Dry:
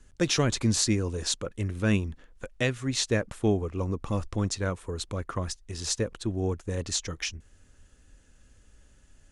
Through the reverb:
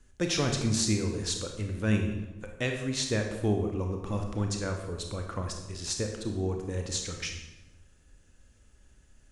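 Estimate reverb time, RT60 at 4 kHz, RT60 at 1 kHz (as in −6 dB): 1.0 s, 0.80 s, 0.95 s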